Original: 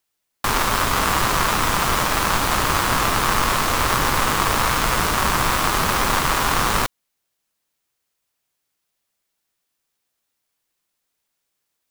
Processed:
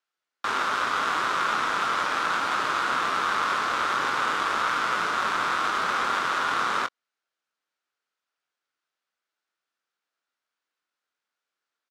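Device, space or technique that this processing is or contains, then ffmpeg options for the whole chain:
intercom: -filter_complex "[0:a]highpass=300,lowpass=4.9k,equalizer=f=1.4k:t=o:w=0.5:g=9.5,asoftclip=type=tanh:threshold=-10.5dB,asplit=2[a][b];[b]adelay=23,volume=-11dB[c];[a][c]amix=inputs=2:normalize=0,volume=-7dB"

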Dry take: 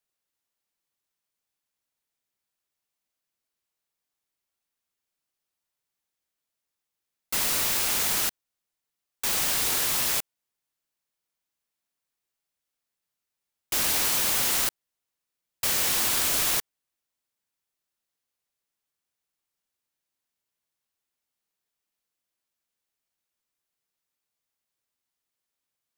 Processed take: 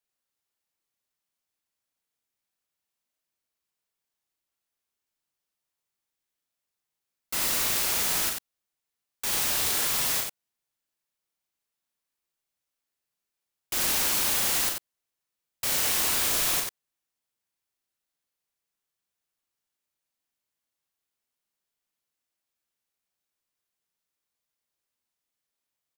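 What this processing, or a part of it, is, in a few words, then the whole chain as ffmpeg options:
slapback doubling: -filter_complex "[0:a]asplit=3[a][b][c];[b]adelay=37,volume=-4.5dB[d];[c]adelay=91,volume=-5dB[e];[a][d][e]amix=inputs=3:normalize=0,volume=-3dB"

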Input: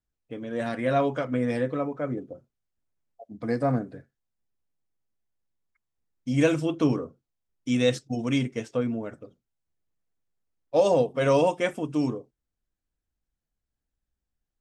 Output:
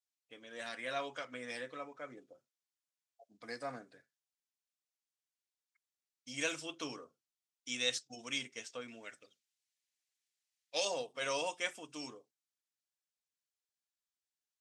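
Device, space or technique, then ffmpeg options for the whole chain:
piezo pickup straight into a mixer: -filter_complex "[0:a]asettb=1/sr,asplit=3[a][b][c];[a]atrim=end=8.884[d];[b]atrim=start=8.88:end=10.85,asetpts=PTS-STARTPTS,afade=t=in:d=0.004:c=qsin,afade=t=out:st=1.966:d=0.004:c=qsin,highshelf=f=1.5k:t=q:w=1.5:g=7.5[e];[c]atrim=start=10.846[f];[d][e]acrossfade=d=0.004:c1=hsin:c2=qsin[g];[g][f]acrossfade=d=0.004:c1=qsin:c2=hsin,lowpass=6.2k,aderivative,volume=5dB"

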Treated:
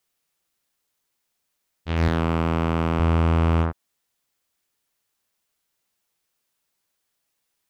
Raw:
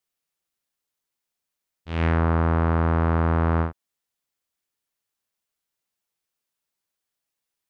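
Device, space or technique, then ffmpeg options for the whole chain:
clipper into limiter: -filter_complex "[0:a]asoftclip=type=hard:threshold=-16dB,alimiter=limit=-21.5dB:level=0:latency=1:release=32,asettb=1/sr,asplit=3[a][b][c];[a]atrim=end=2.084[d];[b]atrim=start=2.08:end=3,asetpts=PTS-STARTPTS,afade=t=in:d=0.004:c=qsin,afade=t=out:st=0.916:d=0.004:c=qsin,highpass=120[e];[c]atrim=start=2.996[f];[d][e]acrossfade=d=0.004:c1=hsin:c2=qsin[g];[g][f]acrossfade=d=0.004:c1=qsin:c2=hsin,volume=7.5dB"

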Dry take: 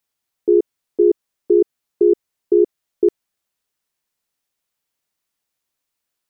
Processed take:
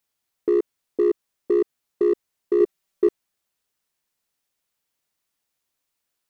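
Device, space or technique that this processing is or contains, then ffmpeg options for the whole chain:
limiter into clipper: -filter_complex "[0:a]alimiter=limit=-12dB:level=0:latency=1:release=29,asoftclip=type=hard:threshold=-13.5dB,asettb=1/sr,asplit=3[a][b][c];[a]atrim=end=2.604[d];[b]atrim=start=2.6:end=3.07,asetpts=PTS-STARTPTS,afade=t=in:d=0.004:c=qsin,afade=t=out:st=0.466:d=0.004:c=qsin,aecho=1:1:5.2:0.68,atrim=end_sample=20727[e];[c]atrim=start=3.066[f];[d][e]acrossfade=d=0.004:c1=hsin:c2=qsin[g];[g][f]acrossfade=d=0.004:c1=qsin:c2=hsin"

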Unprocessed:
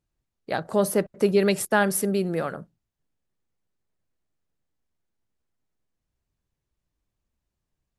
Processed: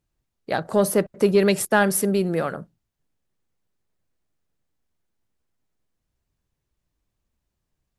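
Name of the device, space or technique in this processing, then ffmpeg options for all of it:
parallel distortion: -filter_complex "[0:a]asplit=2[a][b];[b]asoftclip=type=hard:threshold=-20dB,volume=-13.5dB[c];[a][c]amix=inputs=2:normalize=0,volume=1.5dB"

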